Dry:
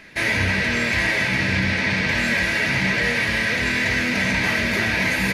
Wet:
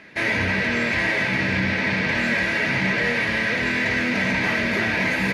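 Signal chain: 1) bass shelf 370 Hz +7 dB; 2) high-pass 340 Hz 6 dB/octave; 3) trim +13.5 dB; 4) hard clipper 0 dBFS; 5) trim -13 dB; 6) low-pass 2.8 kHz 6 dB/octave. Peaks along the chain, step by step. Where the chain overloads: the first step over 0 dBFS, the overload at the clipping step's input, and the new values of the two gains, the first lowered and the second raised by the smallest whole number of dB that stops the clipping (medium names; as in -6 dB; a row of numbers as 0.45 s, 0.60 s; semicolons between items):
-6.5 dBFS, -9.0 dBFS, +4.5 dBFS, 0.0 dBFS, -13.0 dBFS, -13.0 dBFS; step 3, 4.5 dB; step 3 +8.5 dB, step 5 -8 dB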